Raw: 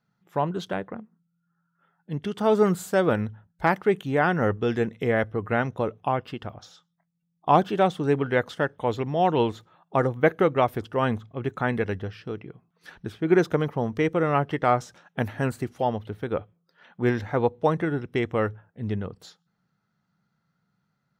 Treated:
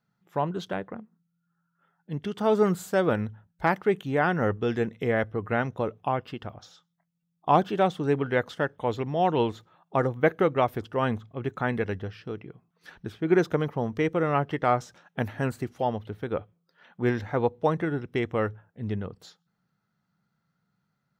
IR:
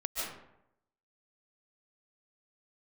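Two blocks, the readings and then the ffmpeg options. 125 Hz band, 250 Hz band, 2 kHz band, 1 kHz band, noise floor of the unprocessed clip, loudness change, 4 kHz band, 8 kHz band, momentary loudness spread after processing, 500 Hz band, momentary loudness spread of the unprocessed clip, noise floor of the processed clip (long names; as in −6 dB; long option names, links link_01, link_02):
−2.0 dB, −2.0 dB, −2.0 dB, −2.0 dB, −76 dBFS, −2.0 dB, −2.0 dB, can't be measured, 13 LU, −2.0 dB, 13 LU, −78 dBFS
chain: -af "equalizer=frequency=9500:width=2.2:gain=-3,volume=-2dB"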